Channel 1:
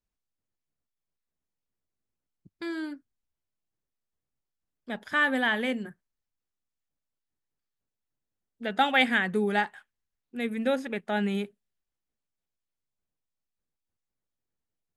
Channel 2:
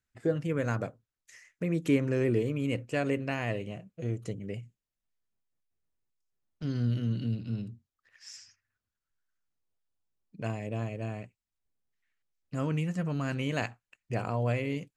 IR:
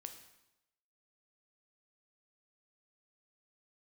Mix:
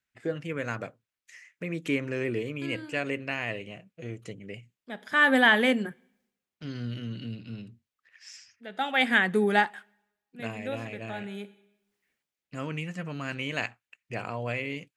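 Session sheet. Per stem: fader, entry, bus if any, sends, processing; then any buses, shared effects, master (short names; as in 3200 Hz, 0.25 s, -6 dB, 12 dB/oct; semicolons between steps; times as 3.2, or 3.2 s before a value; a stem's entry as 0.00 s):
-6.0 dB, 0.00 s, send -15.5 dB, AGC gain up to 14.5 dB; auto duck -22 dB, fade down 0.40 s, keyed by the second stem
-2.5 dB, 0.00 s, no send, bell 2400 Hz +8.5 dB 1.5 oct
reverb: on, RT60 0.90 s, pre-delay 6 ms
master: HPF 160 Hz 6 dB/oct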